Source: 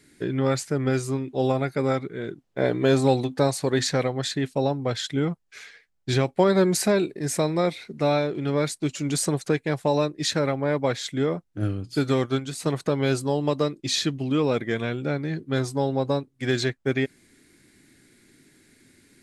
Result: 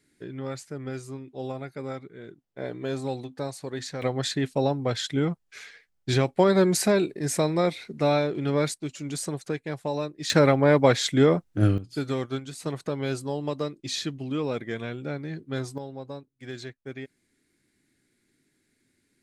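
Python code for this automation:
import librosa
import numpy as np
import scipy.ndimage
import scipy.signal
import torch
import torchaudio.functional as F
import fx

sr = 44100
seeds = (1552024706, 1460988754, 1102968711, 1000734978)

y = fx.gain(x, sr, db=fx.steps((0.0, -11.0), (4.02, -0.5), (8.74, -7.0), (10.3, 5.5), (11.78, -6.0), (15.78, -14.0)))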